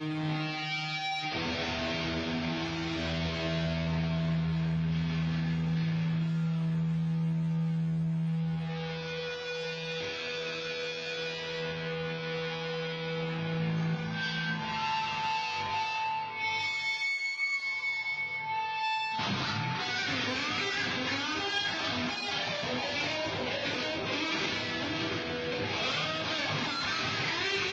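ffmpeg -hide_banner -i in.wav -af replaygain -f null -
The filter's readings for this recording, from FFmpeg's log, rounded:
track_gain = +13.1 dB
track_peak = 0.082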